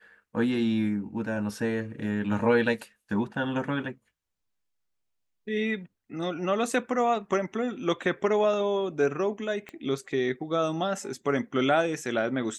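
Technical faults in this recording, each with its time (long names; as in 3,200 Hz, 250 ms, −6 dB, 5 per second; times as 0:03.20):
0:09.69: click −26 dBFS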